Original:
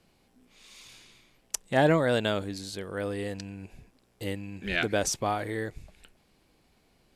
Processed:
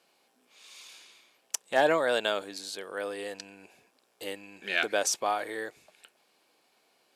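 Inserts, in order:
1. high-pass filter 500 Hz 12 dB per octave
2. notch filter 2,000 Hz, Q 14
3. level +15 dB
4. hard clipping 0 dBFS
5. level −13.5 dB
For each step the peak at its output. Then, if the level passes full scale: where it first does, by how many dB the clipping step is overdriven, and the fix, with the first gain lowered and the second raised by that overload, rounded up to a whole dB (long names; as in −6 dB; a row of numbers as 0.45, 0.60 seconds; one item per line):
−8.0, −8.0, +7.0, 0.0, −13.5 dBFS
step 3, 7.0 dB
step 3 +8 dB, step 5 −6.5 dB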